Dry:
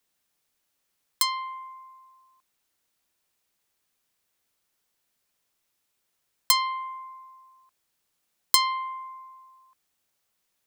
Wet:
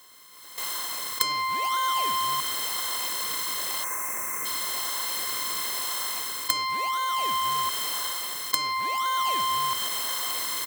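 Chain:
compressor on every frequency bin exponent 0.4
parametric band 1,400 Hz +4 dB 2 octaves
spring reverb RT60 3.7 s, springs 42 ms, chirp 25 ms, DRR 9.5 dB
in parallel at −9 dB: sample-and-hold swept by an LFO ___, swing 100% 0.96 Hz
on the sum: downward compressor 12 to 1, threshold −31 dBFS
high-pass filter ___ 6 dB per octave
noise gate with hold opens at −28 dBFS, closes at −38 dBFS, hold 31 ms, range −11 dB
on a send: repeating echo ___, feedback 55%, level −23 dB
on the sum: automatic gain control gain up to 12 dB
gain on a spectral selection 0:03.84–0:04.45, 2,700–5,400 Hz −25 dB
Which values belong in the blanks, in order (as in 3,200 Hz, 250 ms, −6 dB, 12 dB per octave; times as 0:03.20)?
33×, 820 Hz, 437 ms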